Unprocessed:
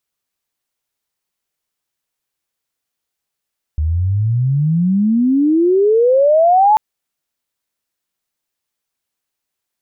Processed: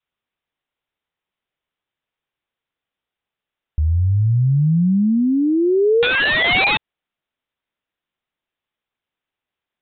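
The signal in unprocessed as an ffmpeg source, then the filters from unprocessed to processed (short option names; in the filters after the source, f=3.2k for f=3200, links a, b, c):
-f lavfi -i "aevalsrc='pow(10,(-13.5+6.5*t/2.99)/20)*sin(2*PI*74*2.99/log(880/74)*(exp(log(880/74)*t/2.99)-1))':d=2.99:s=44100"
-af "adynamicequalizer=threshold=0.0708:dfrequency=300:dqfactor=1.1:tfrequency=300:tqfactor=1.1:attack=5:release=100:ratio=0.375:range=2:mode=cutabove:tftype=bell,aresample=8000,aeval=exprs='(mod(3.35*val(0)+1,2)-1)/3.35':c=same,aresample=44100,alimiter=limit=-11dB:level=0:latency=1:release=101"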